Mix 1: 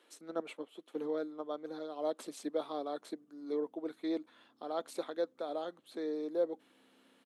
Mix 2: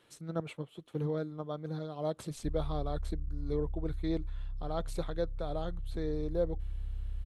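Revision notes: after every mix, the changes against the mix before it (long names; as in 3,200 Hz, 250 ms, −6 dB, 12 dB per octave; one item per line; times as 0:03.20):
background −4.5 dB
master: remove elliptic high-pass filter 250 Hz, stop band 70 dB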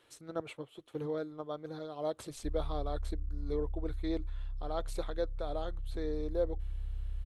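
master: add parametric band 170 Hz −13.5 dB 0.61 octaves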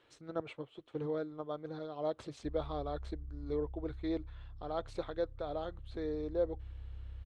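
background: add high-pass filter 70 Hz 12 dB per octave
master: add high-frequency loss of the air 120 metres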